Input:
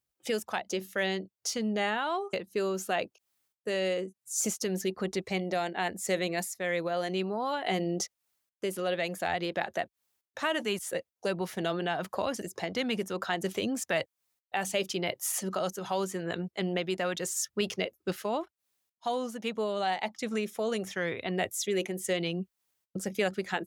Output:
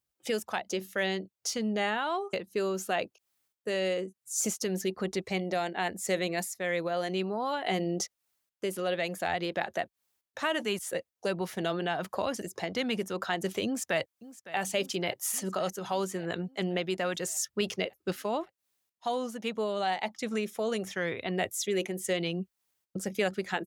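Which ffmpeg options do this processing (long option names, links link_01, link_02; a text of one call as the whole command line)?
ffmpeg -i in.wav -filter_complex "[0:a]asplit=2[link_01][link_02];[link_02]afade=type=in:start_time=13.65:duration=0.01,afade=type=out:start_time=14.57:duration=0.01,aecho=0:1:560|1120|1680|2240|2800|3360|3920|4480:0.149624|0.104736|0.0733155|0.0513209|0.0359246|0.0251472|0.0176031|0.0123221[link_03];[link_01][link_03]amix=inputs=2:normalize=0" out.wav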